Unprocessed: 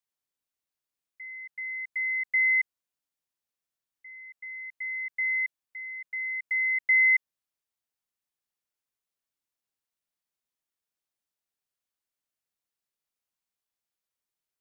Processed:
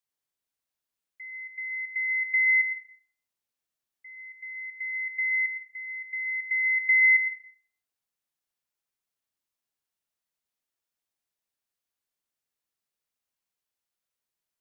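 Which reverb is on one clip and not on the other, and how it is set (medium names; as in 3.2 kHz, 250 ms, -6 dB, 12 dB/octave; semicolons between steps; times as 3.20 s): plate-style reverb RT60 0.51 s, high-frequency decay 0.9×, pre-delay 90 ms, DRR 6 dB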